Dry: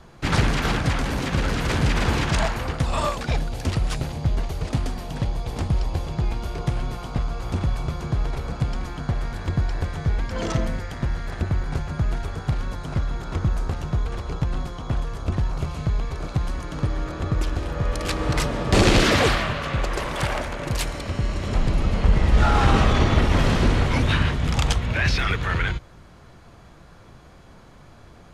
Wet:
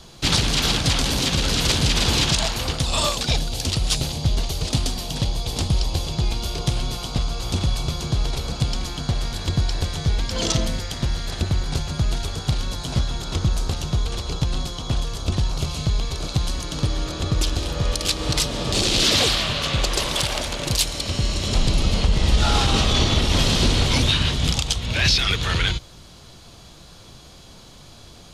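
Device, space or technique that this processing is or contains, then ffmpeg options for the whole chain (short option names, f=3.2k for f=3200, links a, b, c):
over-bright horn tweeter: -filter_complex "[0:a]highshelf=f=2.6k:t=q:w=1.5:g=11,alimiter=limit=-9dB:level=0:latency=1:release=330,asettb=1/sr,asplit=3[a][b][c];[a]atrim=end=12.784[d];[b]atrim=start=12.78:end=13.18,asetpts=PTS-STARTPTS,afade=t=in:d=0.004:c=qsin,afade=t=out:st=0.396:d=0.004:c=qsin,asplit=2[e][f];[f]adelay=16,volume=-6.5dB[g];[e][g]amix=inputs=2:normalize=0,atrim=end_sample=17640[h];[c]atrim=start=13.176[i];[d][h]acrossfade=d=0.004:c1=hsin:c2=qsin[j];[j][i]acrossfade=d=0.004:c1=qsin:c2=hsin,volume=1.5dB"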